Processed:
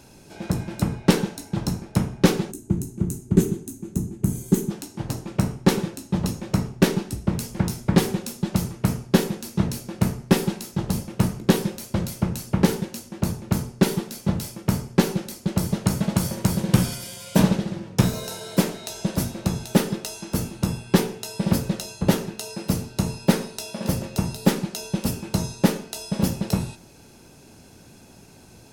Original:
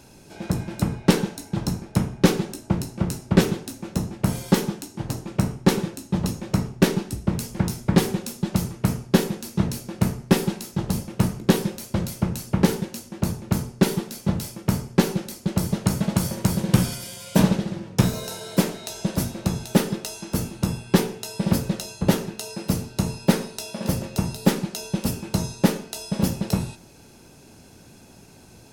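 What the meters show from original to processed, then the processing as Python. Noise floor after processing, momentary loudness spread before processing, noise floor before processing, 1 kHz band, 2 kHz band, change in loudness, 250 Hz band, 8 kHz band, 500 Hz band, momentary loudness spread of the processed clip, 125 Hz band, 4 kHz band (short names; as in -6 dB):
-49 dBFS, 8 LU, -49 dBFS, -0.5 dB, -0.5 dB, 0.0 dB, 0.0 dB, 0.0 dB, 0.0 dB, 8 LU, 0.0 dB, -0.5 dB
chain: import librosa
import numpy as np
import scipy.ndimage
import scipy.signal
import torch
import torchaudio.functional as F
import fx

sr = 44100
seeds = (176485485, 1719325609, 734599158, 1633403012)

y = fx.spec_box(x, sr, start_s=2.51, length_s=2.2, low_hz=440.0, high_hz=6000.0, gain_db=-14)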